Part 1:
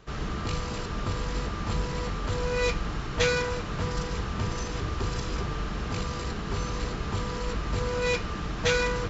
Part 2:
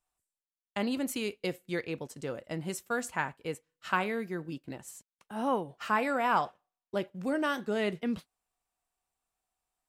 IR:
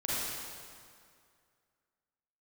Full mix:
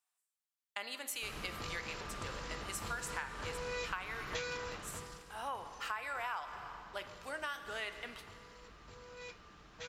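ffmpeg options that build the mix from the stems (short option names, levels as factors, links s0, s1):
-filter_complex "[0:a]lowshelf=f=360:g=-9.5,adelay=1150,volume=0.422,afade=t=out:st=4.64:d=0.62:silence=0.223872[s0];[1:a]highpass=1100,volume=0.891,asplit=2[s1][s2];[s2]volume=0.15[s3];[2:a]atrim=start_sample=2205[s4];[s3][s4]afir=irnorm=-1:irlink=0[s5];[s0][s1][s5]amix=inputs=3:normalize=0,acompressor=threshold=0.0158:ratio=6"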